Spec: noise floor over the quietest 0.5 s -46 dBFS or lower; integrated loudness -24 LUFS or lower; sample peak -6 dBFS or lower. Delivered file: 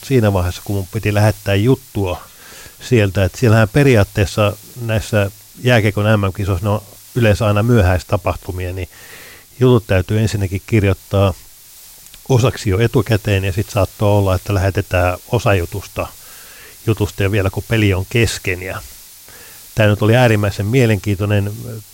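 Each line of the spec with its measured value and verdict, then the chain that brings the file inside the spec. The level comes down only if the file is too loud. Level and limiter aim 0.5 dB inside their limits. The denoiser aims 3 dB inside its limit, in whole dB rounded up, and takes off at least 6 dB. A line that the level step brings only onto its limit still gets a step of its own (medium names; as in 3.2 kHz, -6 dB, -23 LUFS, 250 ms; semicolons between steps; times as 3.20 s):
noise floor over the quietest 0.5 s -40 dBFS: fail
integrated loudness -16.0 LUFS: fail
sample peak -3.0 dBFS: fail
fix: trim -8.5 dB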